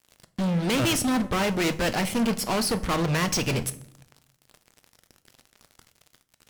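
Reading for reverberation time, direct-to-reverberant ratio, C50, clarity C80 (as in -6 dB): 0.70 s, 11.5 dB, 17.5 dB, 20.5 dB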